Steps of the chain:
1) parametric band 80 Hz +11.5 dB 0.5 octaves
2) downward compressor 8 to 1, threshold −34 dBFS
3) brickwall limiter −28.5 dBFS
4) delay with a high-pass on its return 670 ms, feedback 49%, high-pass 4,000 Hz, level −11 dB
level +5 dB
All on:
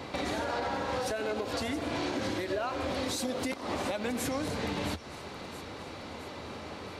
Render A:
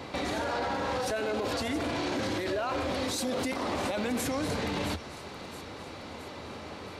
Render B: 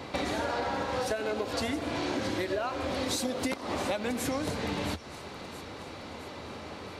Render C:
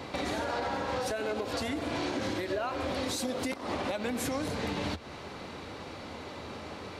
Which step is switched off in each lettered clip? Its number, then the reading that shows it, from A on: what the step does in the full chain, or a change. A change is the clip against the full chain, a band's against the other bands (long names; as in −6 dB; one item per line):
2, average gain reduction 9.0 dB
3, change in crest factor +3.5 dB
4, echo-to-direct ratio −23.0 dB to none audible